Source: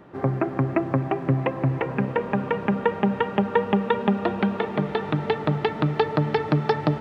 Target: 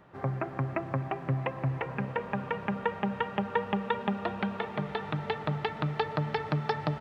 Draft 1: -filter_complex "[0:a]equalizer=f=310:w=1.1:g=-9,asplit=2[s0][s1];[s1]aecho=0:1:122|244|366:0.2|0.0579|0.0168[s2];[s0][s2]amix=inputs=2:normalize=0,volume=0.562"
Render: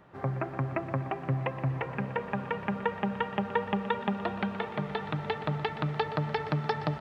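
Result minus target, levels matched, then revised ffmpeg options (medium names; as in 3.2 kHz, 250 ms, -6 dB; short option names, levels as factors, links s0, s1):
echo-to-direct +12 dB
-filter_complex "[0:a]equalizer=f=310:w=1.1:g=-9,asplit=2[s0][s1];[s1]aecho=0:1:122|244:0.0501|0.0145[s2];[s0][s2]amix=inputs=2:normalize=0,volume=0.562"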